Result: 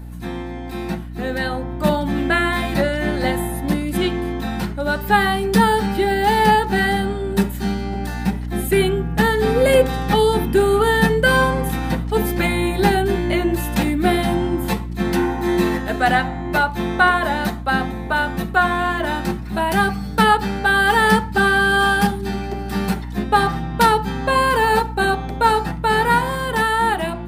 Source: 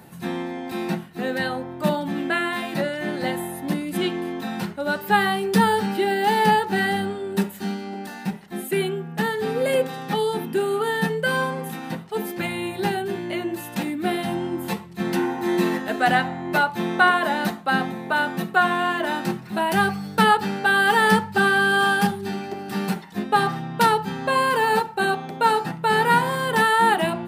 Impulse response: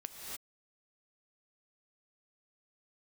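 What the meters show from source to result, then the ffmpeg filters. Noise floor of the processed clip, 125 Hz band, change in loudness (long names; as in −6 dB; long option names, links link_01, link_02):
−29 dBFS, +7.5 dB, +4.0 dB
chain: -af "aeval=exprs='val(0)+0.0282*(sin(2*PI*60*n/s)+sin(2*PI*2*60*n/s)/2+sin(2*PI*3*60*n/s)/3+sin(2*PI*4*60*n/s)/4+sin(2*PI*5*60*n/s)/5)':channel_layout=same,dynaudnorm=framelen=250:gausssize=13:maxgain=11.5dB,bandreject=frequency=2800:width=20,volume=-1dB"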